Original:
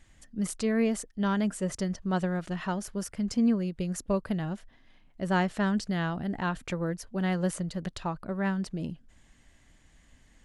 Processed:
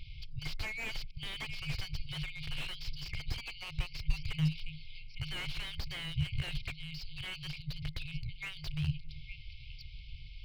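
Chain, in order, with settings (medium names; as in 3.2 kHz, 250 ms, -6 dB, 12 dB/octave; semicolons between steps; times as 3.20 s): FFT band-reject 160–2100 Hz; 6.54–8.52 s: compression 12:1, threshold -44 dBFS, peak gain reduction 9.5 dB; on a send: repeats whose band climbs or falls 286 ms, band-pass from 310 Hz, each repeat 1.4 oct, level -7 dB; on the sum: resampled via 11.025 kHz; slew-rate limiter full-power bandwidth 6.3 Hz; trim +13.5 dB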